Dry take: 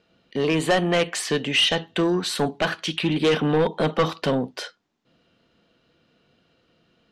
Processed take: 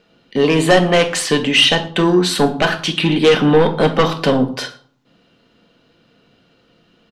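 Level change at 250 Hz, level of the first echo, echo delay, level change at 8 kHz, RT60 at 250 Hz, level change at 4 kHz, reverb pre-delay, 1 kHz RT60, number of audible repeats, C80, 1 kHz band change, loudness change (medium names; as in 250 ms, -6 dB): +8.0 dB, -22.0 dB, 113 ms, +7.5 dB, 0.60 s, +7.5 dB, 4 ms, 0.50 s, 1, 17.5 dB, +8.0 dB, +8.0 dB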